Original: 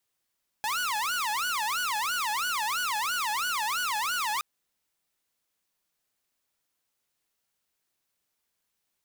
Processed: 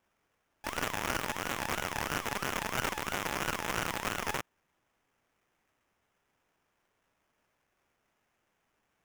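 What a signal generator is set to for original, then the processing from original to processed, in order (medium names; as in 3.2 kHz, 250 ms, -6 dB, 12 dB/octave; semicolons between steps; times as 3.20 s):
siren wail 836–1480 Hz 3 per s saw -24.5 dBFS 3.77 s
pre-emphasis filter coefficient 0.8; sample-rate reducer 4.3 kHz, jitter 20%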